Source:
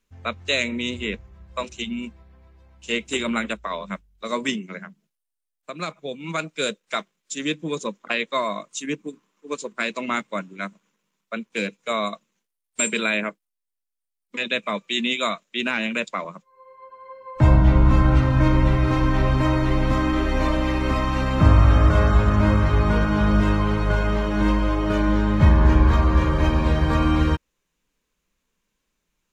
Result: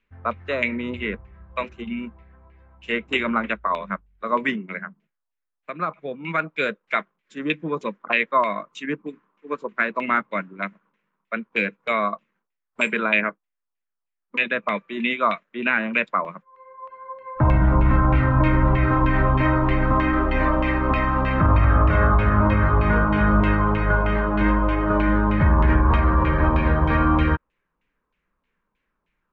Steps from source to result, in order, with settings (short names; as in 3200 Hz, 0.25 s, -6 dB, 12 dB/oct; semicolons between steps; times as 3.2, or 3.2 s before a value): limiter -9 dBFS, peak gain reduction 7 dB; LFO low-pass saw down 3.2 Hz 980–2600 Hz